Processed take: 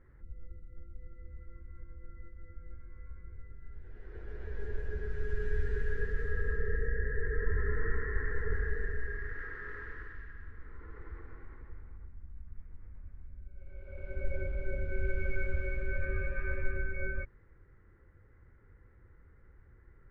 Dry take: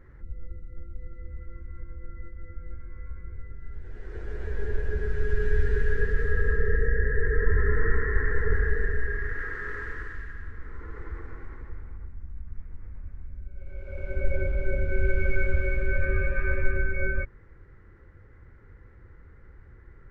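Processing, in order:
low-pass that shuts in the quiet parts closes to 2,900 Hz, open at −16 dBFS
level −8.5 dB

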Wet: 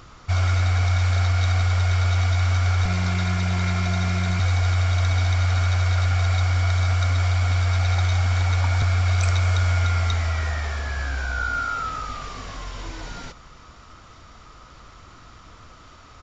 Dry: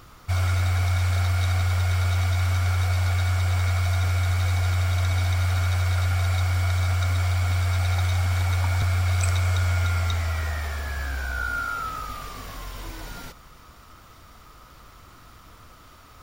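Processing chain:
0:02.85–0:04.40: lower of the sound and its delayed copy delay 2.9 ms
downsampling to 16,000 Hz
level +2.5 dB

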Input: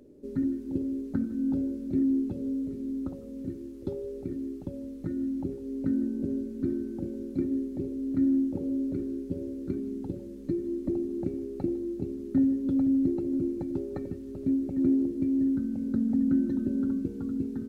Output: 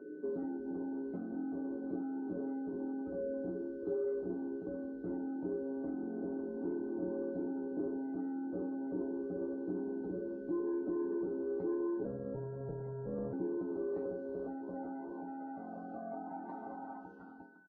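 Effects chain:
fade-out on the ending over 1.02 s
in parallel at +1.5 dB: downward compressor 20 to 1, threshold −32 dBFS, peak gain reduction 13 dB
on the sum: brickwall limiter −21 dBFS, peak gain reduction 7.5 dB
soft clipping −28 dBFS, distortion −13 dB
band-pass filter sweep 390 Hz → 920 Hz, 0:13.39–0:17.20
tuned comb filter 61 Hz, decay 0.38 s, harmonics odd, mix 90%
steady tone 1,500 Hz −77 dBFS
0:12.05–0:13.33: ring modulation 140 Hz
on a send: repeating echo 128 ms, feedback 58%, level −20.5 dB
on the sum: level +13 dB
Ogg Vorbis 16 kbit/s 16,000 Hz

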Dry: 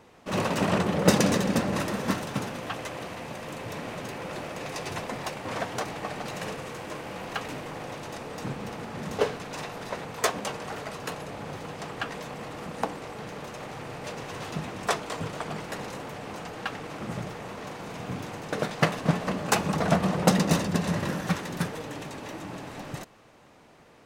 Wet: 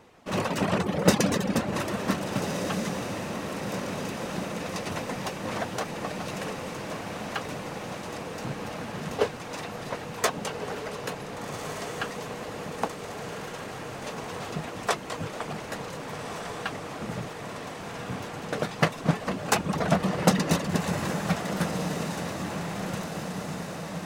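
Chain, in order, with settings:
reverb reduction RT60 0.53 s
feedback delay with all-pass diffusion 1,528 ms, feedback 69%, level −7 dB

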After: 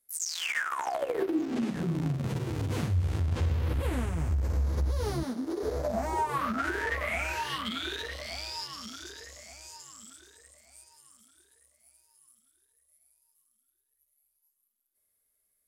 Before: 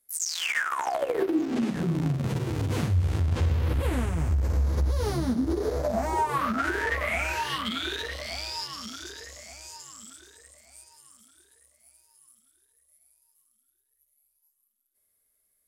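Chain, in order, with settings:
0:05.23–0:05.63: high-pass filter 290 Hz 12 dB per octave
level −3.5 dB

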